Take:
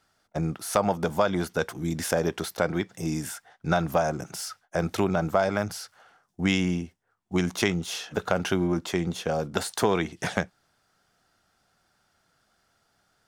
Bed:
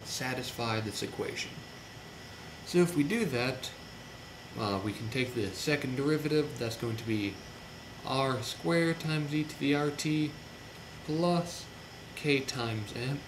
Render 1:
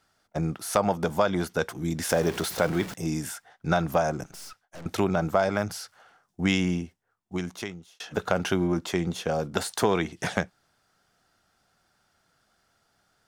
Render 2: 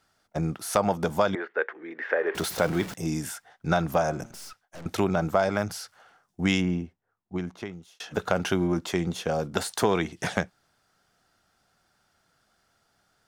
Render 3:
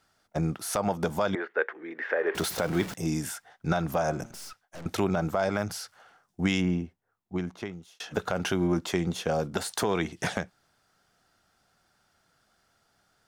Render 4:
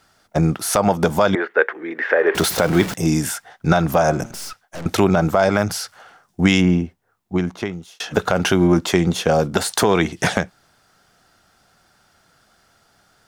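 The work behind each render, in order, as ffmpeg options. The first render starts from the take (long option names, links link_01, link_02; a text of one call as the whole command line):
ffmpeg -i in.wav -filter_complex "[0:a]asettb=1/sr,asplit=3[link_01][link_02][link_03];[link_01]atrim=end=2.094[link_04];[link_02]atrim=start=2.09:end=2.94,asetpts=PTS-STARTPTS,afade=type=in:duration=0.004:curve=qsin,afade=type=out:start_time=0.846:duration=0.004:curve=qsin,aeval=exprs='val(0)+0.5*0.0237*sgn(val(0))':channel_layout=same[link_05];[link_03]atrim=start=2.936[link_06];[link_04][link_05]acrossfade=duration=0.004:curve1=hsin:curve2=qsin[link_07];[link_07][link_06]acrossfade=duration=0.004:curve1=qsin:curve2=hsin,asettb=1/sr,asplit=3[link_08][link_09][link_10];[link_08]atrim=end=4.234[link_11];[link_09]atrim=start=4.23:end=4.86,asetpts=PTS-STARTPTS,afade=type=in:duration=0.004:curve=qsin,afade=type=out:start_time=0.626:duration=0.004:curve=qsin,aeval=exprs='(tanh(112*val(0)+0.8)-tanh(0.8))/112':channel_layout=same[link_12];[link_10]atrim=start=4.856[link_13];[link_11][link_12]acrossfade=duration=0.004:curve1=hsin:curve2=qsin[link_14];[link_14][link_13]acrossfade=duration=0.004:curve1=qsin:curve2=hsin,asplit=2[link_15][link_16];[link_15]atrim=end=8,asetpts=PTS-STARTPTS,afade=type=out:start_time=6.79:duration=1.21[link_17];[link_16]atrim=start=8,asetpts=PTS-STARTPTS,afade=type=in:duration=0.004:curve=hsin[link_18];[link_17][link_18]concat=n=2:v=0:a=1" out.wav
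ffmpeg -i in.wav -filter_complex "[0:a]asettb=1/sr,asplit=3[link_01][link_02][link_03];[link_01]atrim=end=1.354[link_04];[link_02]atrim=start=1.35:end=2.35,asetpts=PTS-STARTPTS,afade=type=in:duration=0.004:curve=qsin,afade=type=out:start_time=0.996:duration=0.004:curve=qsin,highpass=frequency=400:width=0.5412,highpass=frequency=400:width=1.3066,equalizer=frequency=410:width_type=q:width=4:gain=3,equalizer=frequency=710:width_type=q:width=4:gain=-7,equalizer=frequency=1000:width_type=q:width=4:gain=-4,equalizer=frequency=1800:width_type=q:width=4:gain=10,lowpass=frequency=2300:width=0.5412,lowpass=frequency=2300:width=1.3066[link_05];[link_03]atrim=start=2.346[link_06];[link_04][link_05]acrossfade=duration=0.004:curve1=hsin:curve2=qsin[link_07];[link_07][link_06]acrossfade=duration=0.004:curve1=qsin:curve2=hsin,asettb=1/sr,asplit=3[link_08][link_09][link_10];[link_08]atrim=end=3.944[link_11];[link_09]atrim=start=3.94:end=4.38,asetpts=PTS-STARTPTS,afade=type=in:duration=0.004:curve=qsin,afade=type=out:start_time=0.436:duration=0.004:curve=qsin,bandreject=frequency=114.7:width_type=h:width=4,bandreject=frequency=229.4:width_type=h:width=4,bandreject=frequency=344.1:width_type=h:width=4,bandreject=frequency=458.8:width_type=h:width=4,bandreject=frequency=573.5:width_type=h:width=4,bandreject=frequency=688.2:width_type=h:width=4,bandreject=frequency=802.9:width_type=h:width=4,bandreject=frequency=917.6:width_type=h:width=4,bandreject=frequency=1032.3:width_type=h:width=4,bandreject=frequency=1147:width_type=h:width=4,bandreject=frequency=1261.7:width_type=h:width=4,bandreject=frequency=1376.4:width_type=h:width=4,bandreject=frequency=1491.1:width_type=h:width=4,bandreject=frequency=1605.8:width_type=h:width=4,bandreject=frequency=1720.5:width_type=h:width=4,bandreject=frequency=1835.2:width_type=h:width=4,bandreject=frequency=1949.9:width_type=h:width=4,bandreject=frequency=2064.6:width_type=h:width=4,bandreject=frequency=2179.3:width_type=h:width=4,bandreject=frequency=2294:width_type=h:width=4,bandreject=frequency=2408.7:width_type=h:width=4,bandreject=frequency=2523.4:width_type=h:width=4,bandreject=frequency=2638.1:width_type=h:width=4,bandreject=frequency=2752.8:width_type=h:width=4,bandreject=frequency=2867.5:width_type=h:width=4,bandreject=frequency=2982.2:width_type=h:width=4,bandreject=frequency=3096.9:width_type=h:width=4,bandreject=frequency=3211.6:width_type=h:width=4,bandreject=frequency=3326.3:width_type=h:width=4,bandreject=frequency=3441:width_type=h:width=4,bandreject=frequency=3555.7:width_type=h:width=4[link_12];[link_10]atrim=start=4.376[link_13];[link_11][link_12]acrossfade=duration=0.004:curve1=hsin:curve2=qsin[link_14];[link_14][link_13]acrossfade=duration=0.004:curve1=qsin:curve2=hsin,asplit=3[link_15][link_16][link_17];[link_15]afade=type=out:start_time=6.6:duration=0.02[link_18];[link_16]lowpass=frequency=1500:poles=1,afade=type=in:start_time=6.6:duration=0.02,afade=type=out:start_time=7.72:duration=0.02[link_19];[link_17]afade=type=in:start_time=7.72:duration=0.02[link_20];[link_18][link_19][link_20]amix=inputs=3:normalize=0" out.wav
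ffmpeg -i in.wav -af "alimiter=limit=-14dB:level=0:latency=1:release=132" out.wav
ffmpeg -i in.wav -af "volume=11dB" out.wav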